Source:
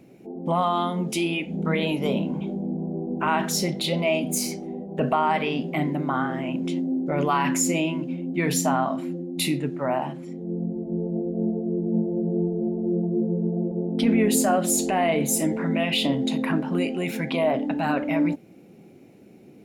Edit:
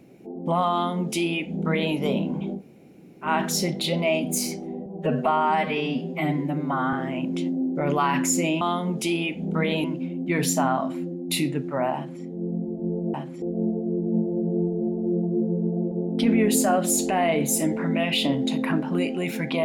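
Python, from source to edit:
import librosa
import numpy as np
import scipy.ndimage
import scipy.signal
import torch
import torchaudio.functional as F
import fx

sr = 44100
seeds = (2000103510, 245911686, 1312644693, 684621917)

y = fx.edit(x, sr, fx.duplicate(start_s=0.72, length_s=1.23, to_s=7.92),
    fx.room_tone_fill(start_s=2.58, length_s=0.68, crossfade_s=0.1),
    fx.stretch_span(start_s=4.86, length_s=1.38, factor=1.5),
    fx.duplicate(start_s=10.03, length_s=0.28, to_s=11.22), tone=tone)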